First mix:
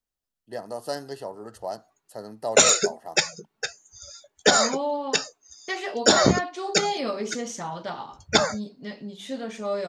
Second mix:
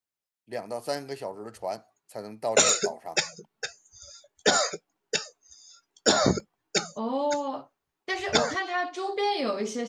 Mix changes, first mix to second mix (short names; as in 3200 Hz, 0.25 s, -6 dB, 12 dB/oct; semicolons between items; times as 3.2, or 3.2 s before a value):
first voice: remove Butterworth band-stop 2300 Hz, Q 3; second voice: entry +2.40 s; background -4.0 dB